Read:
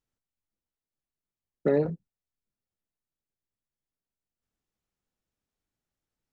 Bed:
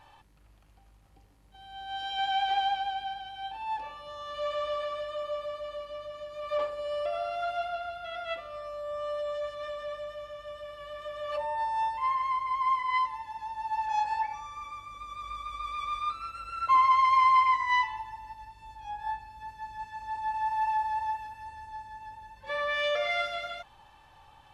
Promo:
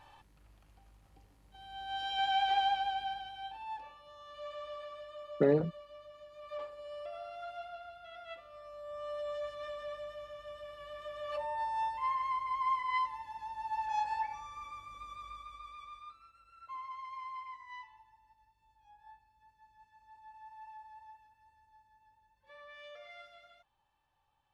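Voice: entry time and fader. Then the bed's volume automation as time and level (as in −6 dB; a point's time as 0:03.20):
3.75 s, −2.5 dB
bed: 0:03.14 −2 dB
0:04.02 −12 dB
0:08.50 −12 dB
0:09.31 −5 dB
0:15.06 −5 dB
0:16.35 −22.5 dB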